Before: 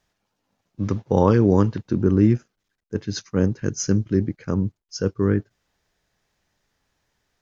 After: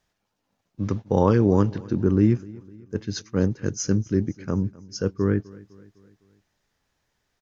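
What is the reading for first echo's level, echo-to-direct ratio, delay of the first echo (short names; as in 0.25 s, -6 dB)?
-22.0 dB, -20.5 dB, 0.253 s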